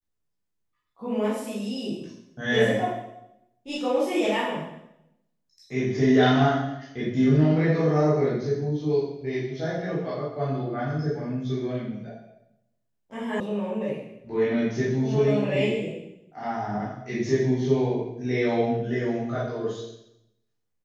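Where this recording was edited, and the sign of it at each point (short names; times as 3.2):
13.4 sound cut off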